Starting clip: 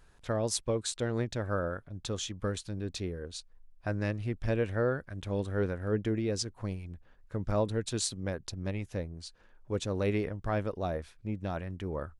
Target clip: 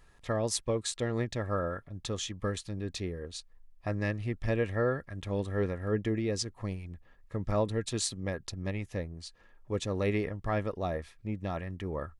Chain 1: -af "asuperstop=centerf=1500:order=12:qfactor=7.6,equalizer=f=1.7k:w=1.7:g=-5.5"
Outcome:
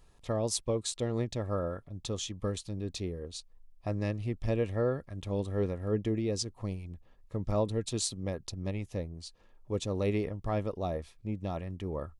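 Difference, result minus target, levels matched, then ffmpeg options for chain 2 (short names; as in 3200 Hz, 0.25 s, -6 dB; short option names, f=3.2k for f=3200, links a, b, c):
2000 Hz band -7.5 dB
-af "asuperstop=centerf=1500:order=12:qfactor=7.6,equalizer=f=1.7k:w=1.7:g=4.5"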